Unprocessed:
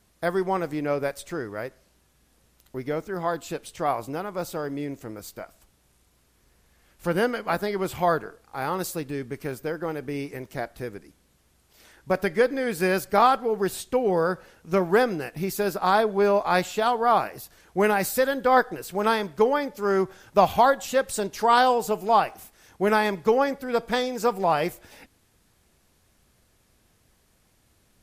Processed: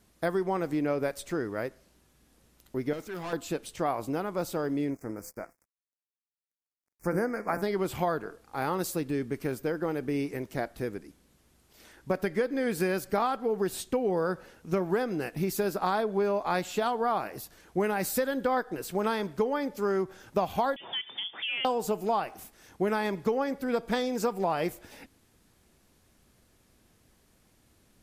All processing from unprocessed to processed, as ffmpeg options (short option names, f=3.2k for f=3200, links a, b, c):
-filter_complex "[0:a]asettb=1/sr,asplit=3[a][b][c];[a]atrim=end=2.934[d];[b]atrim=start=2.93:end=3.33,asetpts=PTS-STARTPTS,afade=t=in:d=0.004:c=qsin,afade=t=out:st=0.396:d=0.004:c=qsin,tiltshelf=f=1.1k:g=-5,aeval=exprs='(tanh(44.7*val(0)+0.15)-tanh(0.15))/44.7':c=same[e];[c]atrim=start=3.326[f];[d][e]acrossfade=d=0.004:c1=hsin:c2=qsin[g];[g][f]acrossfade=d=0.004:c1=qsin:c2=hsin,asettb=1/sr,asplit=3[h][i][j];[h]atrim=end=4.904[k];[i]atrim=start=4.9:end=7.62,asetpts=PTS-STARTPTS,afade=t=in:d=0.004:c=qsin,afade=t=out:st=2.716:d=0.004:c=qsin,bandreject=f=170.4:t=h:w=4,bandreject=f=340.8:t=h:w=4,bandreject=f=511.2:t=h:w=4,bandreject=f=681.6:t=h:w=4,bandreject=f=852:t=h:w=4,bandreject=f=1.0224k:t=h:w=4,bandreject=f=1.1928k:t=h:w=4,bandreject=f=1.3632k:t=h:w=4,bandreject=f=1.5336k:t=h:w=4,bandreject=f=1.704k:t=h:w=4,bandreject=f=1.8744k:t=h:w=4,bandreject=f=2.0448k:t=h:w=4,bandreject=f=2.2152k:t=h:w=4,bandreject=f=2.3856k:t=h:w=4,bandreject=f=2.556k:t=h:w=4,bandreject=f=2.7264k:t=h:w=4,bandreject=f=2.8968k:t=h:w=4,bandreject=f=3.0672k:t=h:w=4,bandreject=f=3.2376k:t=h:w=4,bandreject=f=3.408k:t=h:w=4,bandreject=f=3.5784k:t=h:w=4,bandreject=f=3.7488k:t=h:w=4,bandreject=f=3.9192k:t=h:w=4,bandreject=f=4.0896k:t=h:w=4,bandreject=f=4.26k:t=h:w=4,bandreject=f=4.4304k:t=h:w=4,bandreject=f=4.6008k:t=h:w=4,bandreject=f=4.7712k:t=h:w=4,bandreject=f=4.9416k:t=h:w=4,bandreject=f=5.112k:t=h:w=4,aeval=exprs='sgn(val(0))*max(abs(val(0))-0.00251,0)':c=same,asuperstop=centerf=3400:order=8:qfactor=1.3[l];[j]atrim=start=7.616[m];[k][l]acrossfade=d=0.004:c1=hsin:c2=qsin[n];[n][m]acrossfade=d=0.004:c1=qsin:c2=hsin,asettb=1/sr,asplit=3[o][p][q];[o]atrim=end=20.764[r];[p]atrim=start=20.76:end=21.65,asetpts=PTS-STARTPTS,afade=t=in:d=0.004:c=qsin,afade=t=out:st=0.886:d=0.004:c=qsin,lowpass=f=3.1k:t=q:w=0.5098,lowpass=f=3.1k:t=q:w=0.6013,lowpass=f=3.1k:t=q:w=0.9,lowpass=f=3.1k:t=q:w=2.563,afreqshift=-3600,highpass=f=110:w=0.5412,highpass=f=110:w=1.3066,acompressor=threshold=-30dB:ratio=4:attack=3.2:release=140:knee=1:detection=peak[s];[q]atrim=start=21.646[t];[r][s]acrossfade=d=0.004:c1=hsin:c2=qsin[u];[u][t]acrossfade=d=0.004:c1=qsin:c2=hsin,equalizer=f=270:w=1.1:g=4.5,acompressor=threshold=-23dB:ratio=5,volume=-1.5dB"